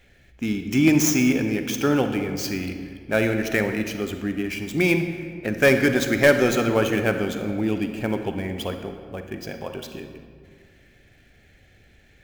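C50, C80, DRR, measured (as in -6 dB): 7.0 dB, 8.5 dB, 6.5 dB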